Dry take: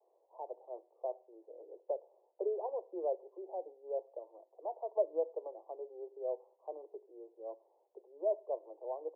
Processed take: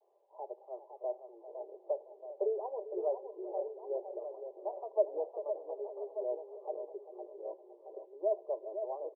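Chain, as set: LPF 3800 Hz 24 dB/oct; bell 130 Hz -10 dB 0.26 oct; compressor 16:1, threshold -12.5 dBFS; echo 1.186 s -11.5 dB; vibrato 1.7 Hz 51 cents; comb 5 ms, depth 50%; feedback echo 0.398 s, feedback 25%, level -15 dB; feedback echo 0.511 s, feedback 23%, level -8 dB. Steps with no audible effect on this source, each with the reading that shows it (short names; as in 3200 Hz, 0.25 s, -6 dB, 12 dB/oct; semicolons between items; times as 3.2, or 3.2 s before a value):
LPF 3800 Hz: input band ends at 1000 Hz; bell 130 Hz: input band starts at 300 Hz; compressor, threshold -12.5 dBFS: input peak -21.0 dBFS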